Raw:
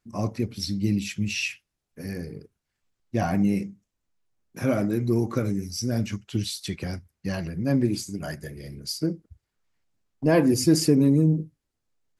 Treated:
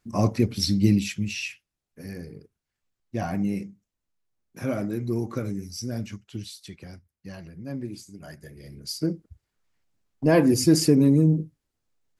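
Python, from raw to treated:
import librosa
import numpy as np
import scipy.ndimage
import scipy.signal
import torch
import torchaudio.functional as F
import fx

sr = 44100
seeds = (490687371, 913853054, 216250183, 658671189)

y = fx.gain(x, sr, db=fx.line((0.86, 5.5), (1.4, -4.0), (5.78, -4.0), (6.78, -11.0), (8.15, -11.0), (9.13, 1.0)))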